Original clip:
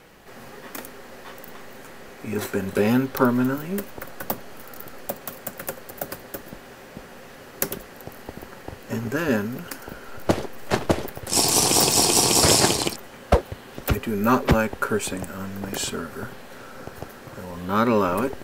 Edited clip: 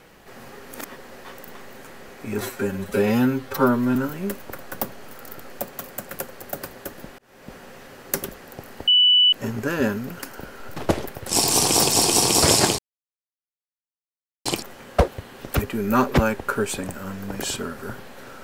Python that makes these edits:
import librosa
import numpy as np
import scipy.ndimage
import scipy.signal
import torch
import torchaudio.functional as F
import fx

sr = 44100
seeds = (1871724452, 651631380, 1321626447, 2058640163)

y = fx.edit(x, sr, fx.reverse_span(start_s=0.6, length_s=0.39),
    fx.stretch_span(start_s=2.41, length_s=1.03, factor=1.5),
    fx.fade_in_span(start_s=6.67, length_s=0.35),
    fx.bleep(start_s=8.36, length_s=0.45, hz=2970.0, db=-12.0),
    fx.cut(start_s=10.25, length_s=0.52),
    fx.insert_silence(at_s=12.79, length_s=1.67), tone=tone)